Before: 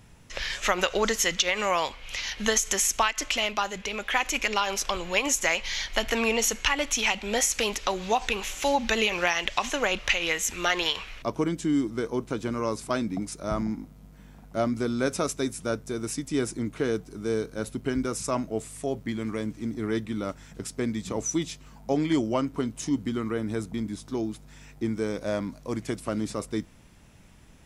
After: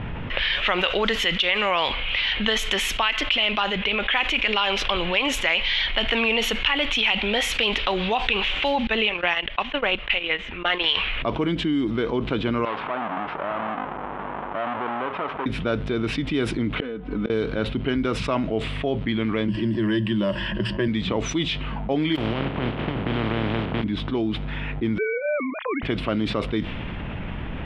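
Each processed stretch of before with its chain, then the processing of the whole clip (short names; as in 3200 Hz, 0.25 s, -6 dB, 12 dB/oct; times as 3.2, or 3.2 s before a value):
8.87–10.84 LPF 2600 Hz 6 dB/oct + gate -29 dBFS, range -26 dB
12.65–15.46 half-waves squared off + compressor 2.5:1, threshold -37 dBFS + band-pass 1000 Hz, Q 1.7
16.76–17.3 comb 4 ms, depth 70% + flipped gate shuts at -23 dBFS, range -30 dB
19.48–20.88 ripple EQ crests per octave 1.3, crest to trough 16 dB + three-band squash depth 40%
22.15–23.82 spectral contrast lowered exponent 0.15 + band-pass 140 Hz, Q 0.55 + negative-ratio compressor -41 dBFS, ratio -0.5
24.98–25.83 sine-wave speech + tilt +4 dB/oct
whole clip: low-pass opened by the level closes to 1700 Hz, open at -20.5 dBFS; resonant high shelf 4600 Hz -13.5 dB, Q 3; fast leveller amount 70%; gain -3.5 dB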